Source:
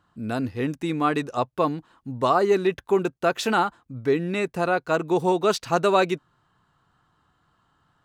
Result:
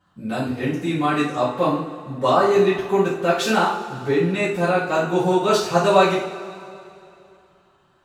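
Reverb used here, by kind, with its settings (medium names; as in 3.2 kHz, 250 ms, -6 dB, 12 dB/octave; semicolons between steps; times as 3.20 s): two-slope reverb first 0.48 s, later 2.8 s, from -18 dB, DRR -10 dB; trim -6 dB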